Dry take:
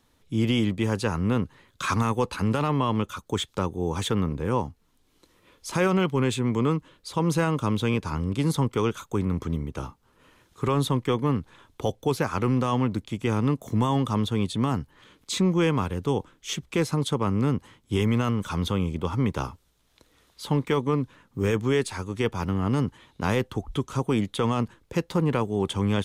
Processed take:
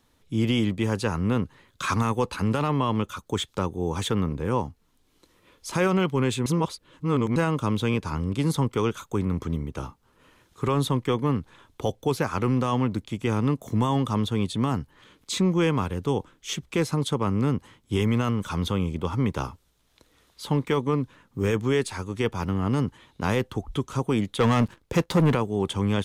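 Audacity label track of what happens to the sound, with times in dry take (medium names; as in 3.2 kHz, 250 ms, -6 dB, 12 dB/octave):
6.460000	7.360000	reverse
24.400000	25.350000	waveshaping leveller passes 2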